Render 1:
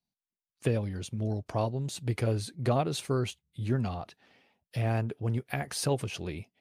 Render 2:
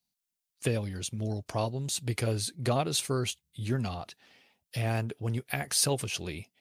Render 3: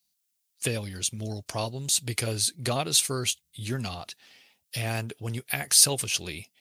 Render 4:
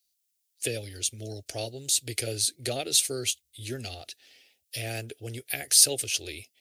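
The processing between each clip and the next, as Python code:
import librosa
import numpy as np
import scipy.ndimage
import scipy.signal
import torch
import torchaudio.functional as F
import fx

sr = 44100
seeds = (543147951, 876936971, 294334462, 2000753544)

y1 = fx.high_shelf(x, sr, hz=2700.0, db=11.5)
y1 = F.gain(torch.from_numpy(y1), -1.5).numpy()
y2 = fx.high_shelf(y1, sr, hz=2200.0, db=11.5)
y2 = F.gain(torch.from_numpy(y2), -1.5).numpy()
y3 = fx.fixed_phaser(y2, sr, hz=430.0, stages=4)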